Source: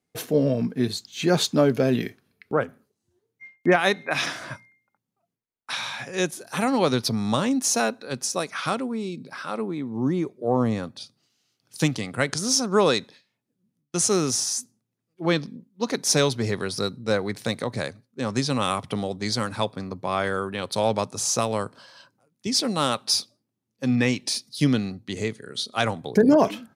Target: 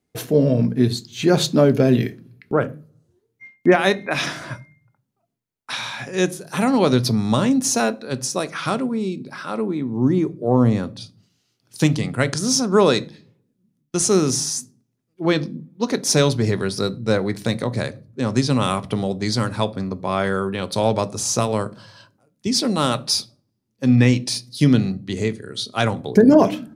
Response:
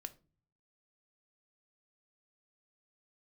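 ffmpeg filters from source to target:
-filter_complex "[0:a]asplit=2[link_01][link_02];[1:a]atrim=start_sample=2205,lowshelf=frequency=360:gain=10[link_03];[link_02][link_03]afir=irnorm=-1:irlink=0,volume=8dB[link_04];[link_01][link_04]amix=inputs=2:normalize=0,volume=-6dB"

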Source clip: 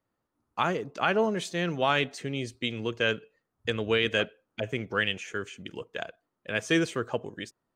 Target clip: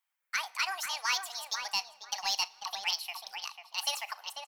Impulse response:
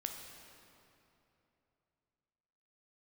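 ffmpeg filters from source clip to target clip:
-filter_complex "[0:a]highpass=frequency=480:width=0.5412,highpass=frequency=480:width=1.3066,aemphasis=mode=production:type=riaa,acrossover=split=5700[link_01][link_02];[link_02]acompressor=threshold=-49dB:ratio=4:attack=1:release=60[link_03];[link_01][link_03]amix=inputs=2:normalize=0,asoftclip=type=tanh:threshold=-14.5dB,flanger=delay=1.6:depth=2.3:regen=-52:speed=1.3:shape=sinusoidal,asplit=2[link_04][link_05];[link_05]adelay=856,lowpass=frequency=990:poles=1,volume=-4.5dB,asplit=2[link_06][link_07];[link_07]adelay=856,lowpass=frequency=990:poles=1,volume=0.24,asplit=2[link_08][link_09];[link_09]adelay=856,lowpass=frequency=990:poles=1,volume=0.24[link_10];[link_04][link_06][link_08][link_10]amix=inputs=4:normalize=0,asplit=2[link_11][link_12];[1:a]atrim=start_sample=2205,adelay=65[link_13];[link_12][link_13]afir=irnorm=-1:irlink=0,volume=-18.5dB[link_14];[link_11][link_14]amix=inputs=2:normalize=0,asetrate=76440,aresample=44100"

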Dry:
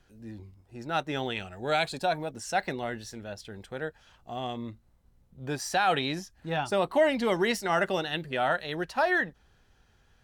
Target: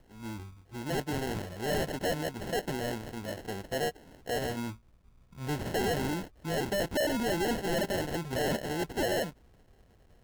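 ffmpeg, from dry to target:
ffmpeg -i in.wav -filter_complex "[0:a]asettb=1/sr,asplit=3[link_01][link_02][link_03];[link_01]atrim=end=3.354[link_04];[link_02]atrim=start=3.35:end=4.38,asetpts=PTS-STARTPTS,afade=type=in:duration=0.004:curve=qsin,afade=type=out:start_time=1.026:duration=0.004:curve=qsin,equalizer=frequency=610:width_type=o:width=2.3:gain=7.5[link_05];[link_03]atrim=start=4.376[link_06];[link_04][link_05]acrossfade=duration=0.004:curve1=hsin:curve2=qsin[link_07];[link_07][link_06]acrossfade=duration=0.004:curve1=qsin:curve2=hsin,acrusher=samples=37:mix=1:aa=0.000001,asoftclip=type=tanh:threshold=-29.5dB,volume=3dB" out.wav

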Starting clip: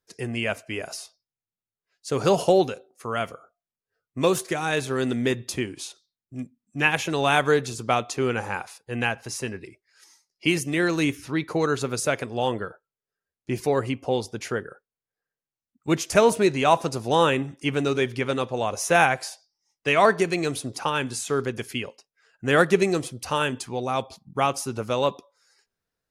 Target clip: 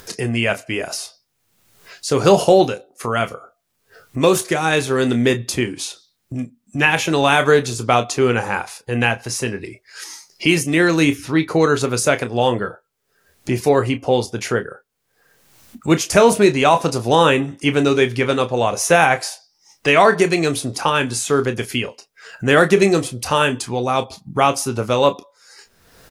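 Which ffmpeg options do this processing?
ffmpeg -i in.wav -af "acompressor=mode=upward:threshold=-29dB:ratio=2.5,aecho=1:1:25|35:0.266|0.178,alimiter=level_in=8.5dB:limit=-1dB:release=50:level=0:latency=1,volume=-1dB" out.wav

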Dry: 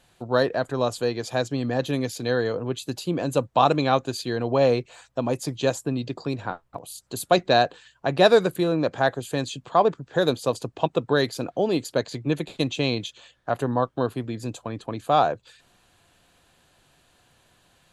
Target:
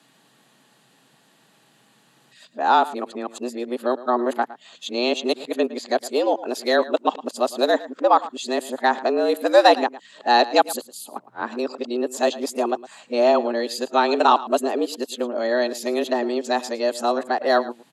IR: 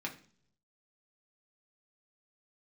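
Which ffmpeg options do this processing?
-filter_complex "[0:a]areverse,asplit=2[link_01][link_02];[link_02]adelay=110.8,volume=-17dB,highshelf=frequency=4000:gain=-2.49[link_03];[link_01][link_03]amix=inputs=2:normalize=0,afreqshift=120,acrossover=split=150|2100[link_04][link_05][link_06];[link_04]acompressor=threshold=-59dB:ratio=6[link_07];[link_07][link_05][link_06]amix=inputs=3:normalize=0,volume=2.5dB"

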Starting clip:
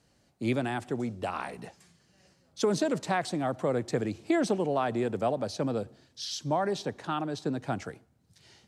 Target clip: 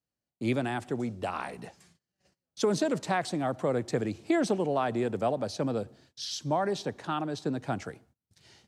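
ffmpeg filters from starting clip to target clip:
ffmpeg -i in.wav -af "agate=range=-25dB:threshold=-60dB:ratio=16:detection=peak" out.wav

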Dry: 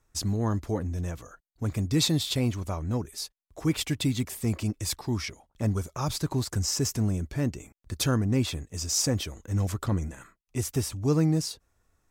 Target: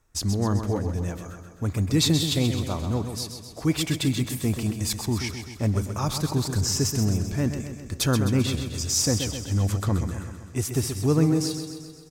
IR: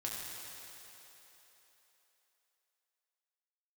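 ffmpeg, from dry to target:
-filter_complex "[0:a]aecho=1:1:130|260|390|520|650|780|910:0.398|0.231|0.134|0.0777|0.0451|0.0261|0.0152,asplit=2[link_01][link_02];[1:a]atrim=start_sample=2205,asetrate=38367,aresample=44100[link_03];[link_02][link_03]afir=irnorm=-1:irlink=0,volume=-20.5dB[link_04];[link_01][link_04]amix=inputs=2:normalize=0,volume=2dB"

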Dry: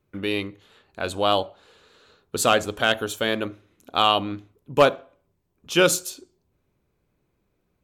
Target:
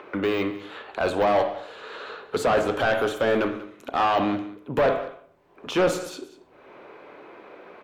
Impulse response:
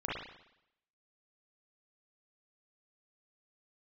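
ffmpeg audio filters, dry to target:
-filter_complex "[0:a]deesser=0.95,highshelf=frequency=8000:gain=4,acrossover=split=300|3800[link_01][link_02][link_03];[link_02]acompressor=mode=upward:threshold=-38dB:ratio=2.5[link_04];[link_01][link_04][link_03]amix=inputs=3:normalize=0,asplit=2[link_05][link_06];[link_06]highpass=frequency=720:poles=1,volume=23dB,asoftclip=type=tanh:threshold=-7dB[link_07];[link_05][link_07]amix=inputs=2:normalize=0,lowpass=frequency=1200:poles=1,volume=-6dB,asoftclip=type=tanh:threshold=-14dB,aecho=1:1:189:0.141,asplit=2[link_08][link_09];[1:a]atrim=start_sample=2205,afade=type=out:start_time=0.21:duration=0.01,atrim=end_sample=9702[link_10];[link_09][link_10]afir=irnorm=-1:irlink=0,volume=-11dB[link_11];[link_08][link_11]amix=inputs=2:normalize=0,volume=-3dB"

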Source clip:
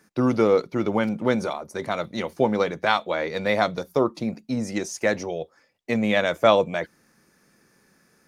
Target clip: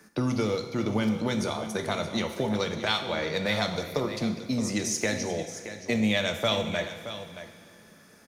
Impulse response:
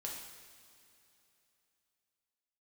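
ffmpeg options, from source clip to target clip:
-filter_complex "[0:a]acrossover=split=130|3000[link_01][link_02][link_03];[link_02]acompressor=threshold=-33dB:ratio=6[link_04];[link_01][link_04][link_03]amix=inputs=3:normalize=0,aecho=1:1:623:0.251,asplit=2[link_05][link_06];[1:a]atrim=start_sample=2205[link_07];[link_06][link_07]afir=irnorm=-1:irlink=0,volume=1.5dB[link_08];[link_05][link_08]amix=inputs=2:normalize=0"

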